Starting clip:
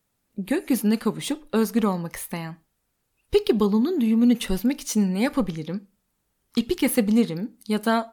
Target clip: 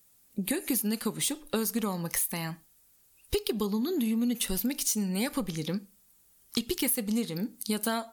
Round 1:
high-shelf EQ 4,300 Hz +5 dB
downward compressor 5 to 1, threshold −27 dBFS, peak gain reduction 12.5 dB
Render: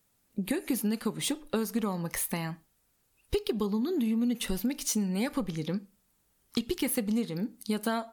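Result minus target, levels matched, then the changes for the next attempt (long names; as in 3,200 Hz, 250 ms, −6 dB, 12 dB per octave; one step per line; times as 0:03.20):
8,000 Hz band −3.5 dB
change: high-shelf EQ 4,300 Hz +16.5 dB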